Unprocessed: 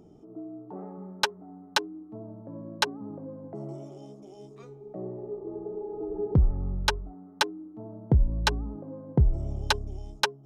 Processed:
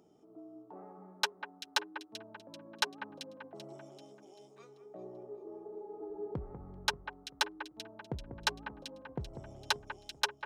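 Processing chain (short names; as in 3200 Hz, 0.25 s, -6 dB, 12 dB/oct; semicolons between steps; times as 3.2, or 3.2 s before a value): low shelf 460 Hz -11.5 dB; echo with dull and thin repeats by turns 0.194 s, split 2300 Hz, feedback 63%, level -10.5 dB; in parallel at -8 dB: soft clip -28.5 dBFS, distortion -5 dB; on the sum: HPF 160 Hz 6 dB/oct; gain -6 dB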